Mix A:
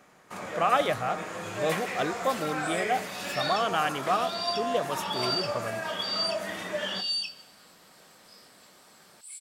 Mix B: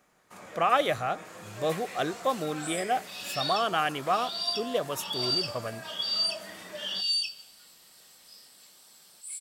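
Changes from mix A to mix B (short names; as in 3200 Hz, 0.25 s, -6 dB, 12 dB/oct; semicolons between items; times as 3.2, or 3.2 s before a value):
first sound -9.5 dB; master: add high shelf 6100 Hz +6.5 dB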